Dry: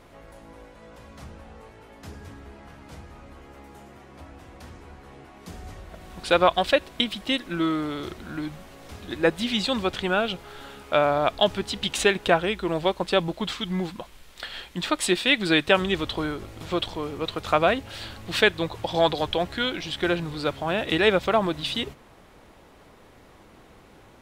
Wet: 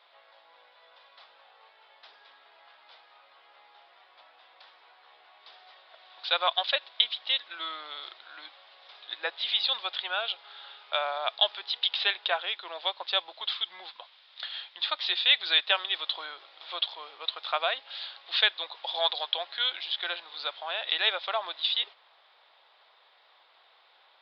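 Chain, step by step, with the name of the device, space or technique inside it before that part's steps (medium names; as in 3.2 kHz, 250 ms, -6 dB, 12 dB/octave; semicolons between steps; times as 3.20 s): musical greeting card (resampled via 11.025 kHz; high-pass 680 Hz 24 dB/octave; peaking EQ 3.6 kHz +11 dB 0.48 oct); trim -6.5 dB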